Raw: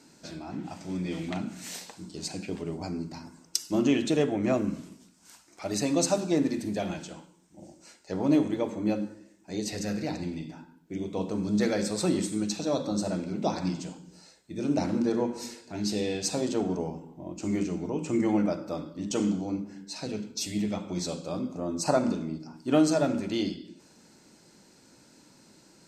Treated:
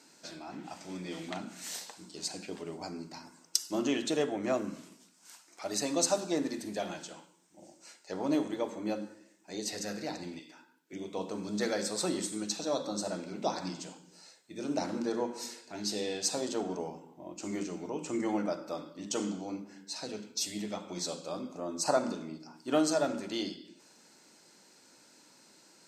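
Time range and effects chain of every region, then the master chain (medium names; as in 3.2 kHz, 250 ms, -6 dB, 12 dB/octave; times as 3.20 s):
10.39–10.93 s: high-pass 380 Hz + peaking EQ 730 Hz -9 dB
whole clip: high-pass 600 Hz 6 dB/octave; dynamic bell 2.4 kHz, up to -5 dB, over -55 dBFS, Q 2.9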